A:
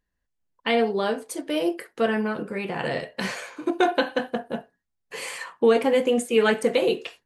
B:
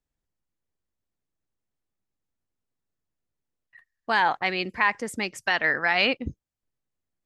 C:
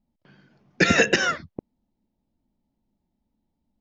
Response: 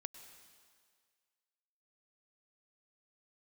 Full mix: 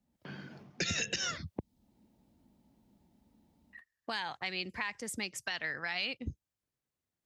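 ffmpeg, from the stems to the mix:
-filter_complex "[1:a]volume=-0.5dB[link_01];[2:a]dynaudnorm=framelen=120:gausssize=3:maxgain=13dB,volume=-3.5dB[link_02];[link_01][link_02]amix=inputs=2:normalize=0,acrossover=split=130|3000[link_03][link_04][link_05];[link_04]acompressor=threshold=-40dB:ratio=3[link_06];[link_03][link_06][link_05]amix=inputs=3:normalize=0,alimiter=limit=-19dB:level=0:latency=1:release=164,volume=0dB,highpass=59,acompressor=threshold=-36dB:ratio=1.5"

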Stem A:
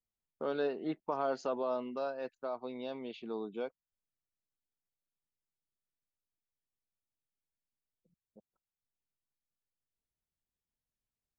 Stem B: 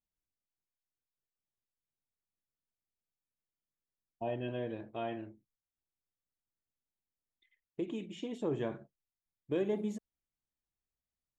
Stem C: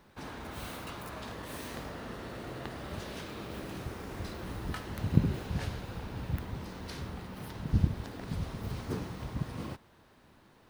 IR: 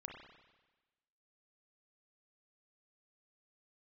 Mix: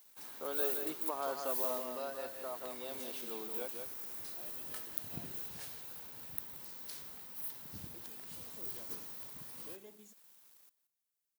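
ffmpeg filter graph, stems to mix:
-filter_complex "[0:a]volume=-3.5dB,asplit=2[link_01][link_02];[link_02]volume=-5.5dB[link_03];[1:a]highshelf=frequency=4800:gain=11.5,adelay=150,volume=-18.5dB[link_04];[2:a]aemphasis=mode=production:type=50fm,acrusher=bits=8:mix=0:aa=0.000001,volume=-15dB,asplit=3[link_05][link_06][link_07];[link_06]volume=-5dB[link_08];[link_07]volume=-16dB[link_09];[3:a]atrim=start_sample=2205[link_10];[link_08][link_10]afir=irnorm=-1:irlink=0[link_11];[link_03][link_09]amix=inputs=2:normalize=0,aecho=0:1:177:1[link_12];[link_01][link_04][link_05][link_11][link_12]amix=inputs=5:normalize=0,highpass=frequency=460:poles=1,crystalizer=i=1.5:c=0"

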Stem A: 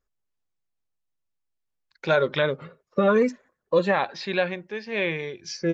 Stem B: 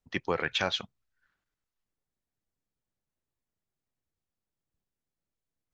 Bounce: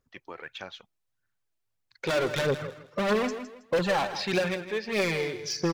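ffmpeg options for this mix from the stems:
ffmpeg -i stem1.wav -i stem2.wav -filter_complex "[0:a]equalizer=frequency=110:width_type=o:width=0.34:gain=12,aeval=exprs='0.376*(cos(1*acos(clip(val(0)/0.376,-1,1)))-cos(1*PI/2))+0.0168*(cos(6*acos(clip(val(0)/0.376,-1,1)))-cos(6*PI/2))':channel_layout=same,asoftclip=type=hard:threshold=-26dB,volume=2dB,asplit=2[link_01][link_02];[link_02]volume=-11.5dB[link_03];[1:a]bass=frequency=250:gain=-4,treble=frequency=4000:gain=-4,volume=-12dB[link_04];[link_03]aecho=0:1:161|322|483|644:1|0.27|0.0729|0.0197[link_05];[link_01][link_04][link_05]amix=inputs=3:normalize=0,lowshelf=frequency=61:gain=-9,aphaser=in_gain=1:out_gain=1:delay=3.4:decay=0.39:speed=1.6:type=triangular" out.wav

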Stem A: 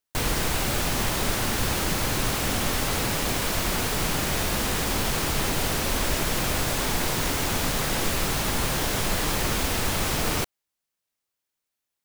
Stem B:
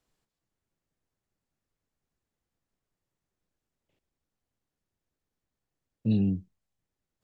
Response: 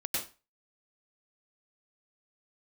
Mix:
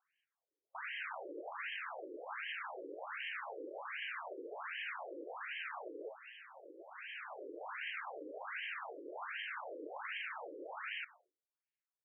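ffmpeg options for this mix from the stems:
-filter_complex "[0:a]lowpass=3000,adelay=600,volume=-12.5dB,asplit=2[link_01][link_02];[link_02]volume=-19dB[link_03];[1:a]volume=0.5dB,asplit=2[link_04][link_05];[link_05]apad=whole_len=557611[link_06];[link_01][link_06]sidechaincompress=threshold=-40dB:ratio=8:attack=16:release=988[link_07];[2:a]atrim=start_sample=2205[link_08];[link_03][link_08]afir=irnorm=-1:irlink=0[link_09];[link_07][link_04][link_09]amix=inputs=3:normalize=0,highshelf=frequency=2100:gain=11,afftfilt=real='re*between(b*sr/1024,390*pow(2300/390,0.5+0.5*sin(2*PI*1.3*pts/sr))/1.41,390*pow(2300/390,0.5+0.5*sin(2*PI*1.3*pts/sr))*1.41)':imag='im*between(b*sr/1024,390*pow(2300/390,0.5+0.5*sin(2*PI*1.3*pts/sr))/1.41,390*pow(2300/390,0.5+0.5*sin(2*PI*1.3*pts/sr))*1.41)':win_size=1024:overlap=0.75"

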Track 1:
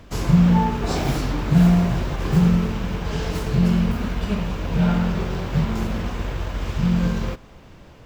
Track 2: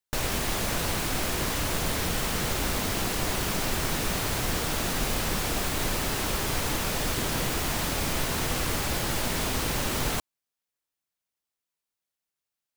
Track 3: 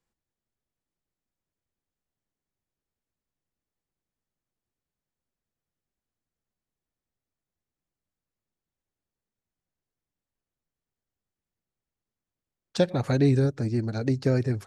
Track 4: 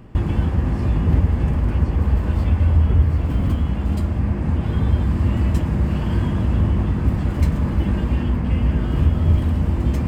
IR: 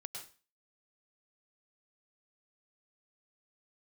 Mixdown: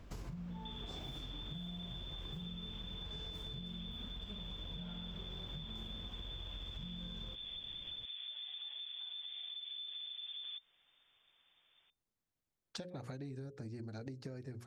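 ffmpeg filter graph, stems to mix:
-filter_complex "[0:a]lowshelf=frequency=130:gain=5.5,volume=-13dB[link_01];[1:a]adelay=1700,volume=-10.5dB[link_02];[2:a]bandreject=frequency=60:width_type=h:width=6,bandreject=frequency=120:width_type=h:width=6,bandreject=frequency=180:width_type=h:width=6,bandreject=frequency=240:width_type=h:width=6,bandreject=frequency=300:width_type=h:width=6,bandreject=frequency=360:width_type=h:width=6,bandreject=frequency=420:width_type=h:width=6,bandreject=frequency=480:width_type=h:width=6,bandreject=frequency=540:width_type=h:width=6,volume=-1.5dB,asplit=2[link_03][link_04];[3:a]adelay=500,volume=-18dB[link_05];[link_04]apad=whole_len=638038[link_06];[link_02][link_06]sidechaingate=range=-33dB:threshold=-33dB:ratio=16:detection=peak[link_07];[link_07][link_05]amix=inputs=2:normalize=0,lowpass=frequency=3100:width_type=q:width=0.5098,lowpass=frequency=3100:width_type=q:width=0.6013,lowpass=frequency=3100:width_type=q:width=0.9,lowpass=frequency=3100:width_type=q:width=2.563,afreqshift=-3600,alimiter=level_in=10.5dB:limit=-24dB:level=0:latency=1:release=140,volume=-10.5dB,volume=0dB[link_08];[link_01][link_03]amix=inputs=2:normalize=0,acompressor=threshold=-37dB:ratio=3,volume=0dB[link_09];[link_08][link_09]amix=inputs=2:normalize=0,acompressor=threshold=-44dB:ratio=4"

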